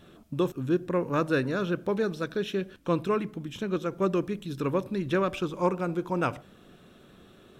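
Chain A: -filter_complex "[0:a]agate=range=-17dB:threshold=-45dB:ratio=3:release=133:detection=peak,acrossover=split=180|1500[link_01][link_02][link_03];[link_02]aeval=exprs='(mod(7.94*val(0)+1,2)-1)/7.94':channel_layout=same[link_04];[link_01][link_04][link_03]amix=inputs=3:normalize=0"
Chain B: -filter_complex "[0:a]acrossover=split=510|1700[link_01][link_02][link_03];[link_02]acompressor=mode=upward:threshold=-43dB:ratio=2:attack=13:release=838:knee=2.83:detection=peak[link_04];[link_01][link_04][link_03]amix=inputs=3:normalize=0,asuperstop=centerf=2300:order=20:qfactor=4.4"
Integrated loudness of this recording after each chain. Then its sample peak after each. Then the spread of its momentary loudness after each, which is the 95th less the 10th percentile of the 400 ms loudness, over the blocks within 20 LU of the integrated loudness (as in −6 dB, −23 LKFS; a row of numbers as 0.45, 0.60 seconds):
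−29.5, −29.5 LKFS; −14.0, −12.0 dBFS; 5, 5 LU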